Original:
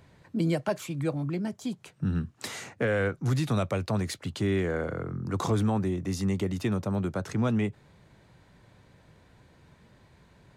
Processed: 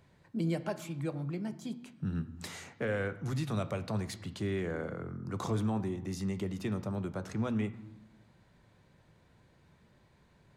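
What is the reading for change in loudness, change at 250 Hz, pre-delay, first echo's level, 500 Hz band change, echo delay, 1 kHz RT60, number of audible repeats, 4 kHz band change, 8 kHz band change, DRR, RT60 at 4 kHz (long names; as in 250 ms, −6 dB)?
−6.5 dB, −6.0 dB, 5 ms, no echo audible, −6.5 dB, no echo audible, 0.95 s, no echo audible, −7.0 dB, −7.0 dB, 11.0 dB, 0.75 s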